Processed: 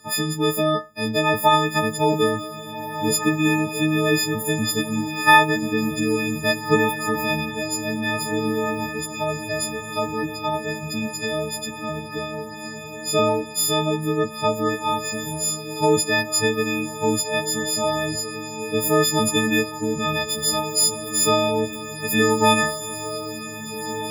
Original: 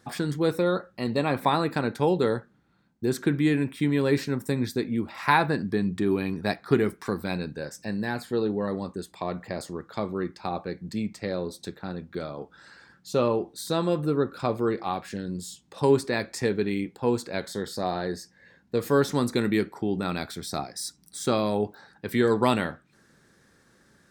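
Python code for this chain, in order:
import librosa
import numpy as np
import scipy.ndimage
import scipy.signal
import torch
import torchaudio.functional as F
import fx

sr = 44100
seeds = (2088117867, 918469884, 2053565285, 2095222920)

y = fx.freq_snap(x, sr, grid_st=6)
y = fx.echo_diffused(y, sr, ms=1735, feedback_pct=59, wet_db=-10.0)
y = y * librosa.db_to_amplitude(2.5)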